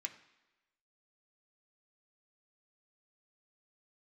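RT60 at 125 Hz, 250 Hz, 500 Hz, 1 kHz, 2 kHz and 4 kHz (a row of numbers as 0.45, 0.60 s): 0.85, 1.0, 1.1, 1.1, 1.1, 1.0 s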